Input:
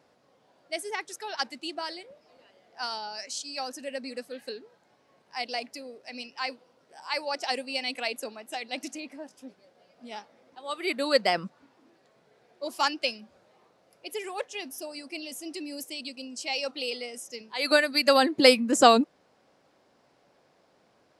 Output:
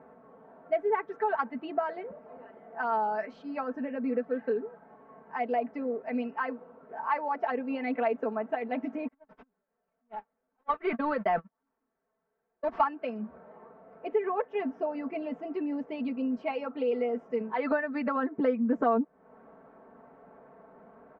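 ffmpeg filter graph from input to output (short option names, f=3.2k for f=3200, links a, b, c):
-filter_complex "[0:a]asettb=1/sr,asplit=3[a][b][c];[a]atrim=end=9.084[d];[b]atrim=start=9.08:end=12.84,asetpts=PTS-STARTPTS,afade=t=in:d=0.004:c=qsin,afade=t=out:st=3.756:d=0.004:c=qsin,aeval=exprs='val(0)+0.5*0.0237*sgn(val(0))':c=same,highshelf=f=2k:g=9.5,agate=range=-55dB:threshold=-28dB:ratio=16:release=100:detection=peak[e];[c]atrim=start=12.836[f];[d][e]acrossfade=d=0.004:c1=hsin:c2=qsin[g];[g][f]acrossfade=d=0.004:c1=qsin:c2=hsin,lowpass=f=1.5k:w=0.5412,lowpass=f=1.5k:w=1.3066,acompressor=threshold=-38dB:ratio=4,aecho=1:1:4.5:0.88,volume=9dB"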